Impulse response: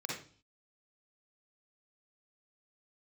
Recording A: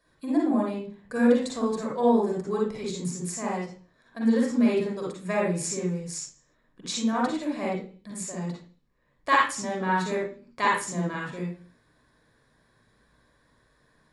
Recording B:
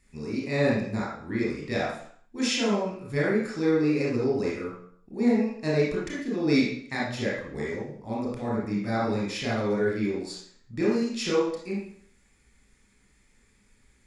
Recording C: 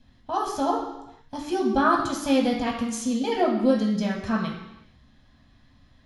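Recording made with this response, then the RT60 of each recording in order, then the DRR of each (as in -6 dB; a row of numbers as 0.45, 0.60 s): A; 0.45 s, 0.60 s, not exponential; -3.5, -6.0, -2.5 dB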